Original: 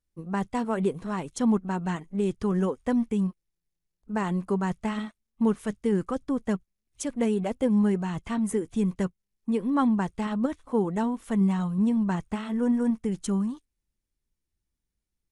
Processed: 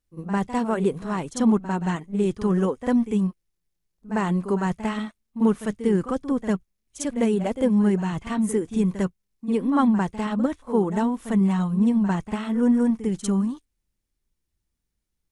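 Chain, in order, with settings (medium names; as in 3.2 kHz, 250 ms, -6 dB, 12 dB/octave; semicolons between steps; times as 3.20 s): pre-echo 50 ms -12 dB; trim +3.5 dB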